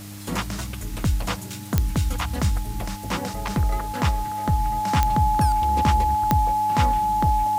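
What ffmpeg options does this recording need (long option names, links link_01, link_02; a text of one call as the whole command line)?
ffmpeg -i in.wav -af "adeclick=threshold=4,bandreject=frequency=101.3:width_type=h:width=4,bandreject=frequency=202.6:width_type=h:width=4,bandreject=frequency=303.9:width_type=h:width=4,bandreject=frequency=850:width=30,afwtdn=0.0071" out.wav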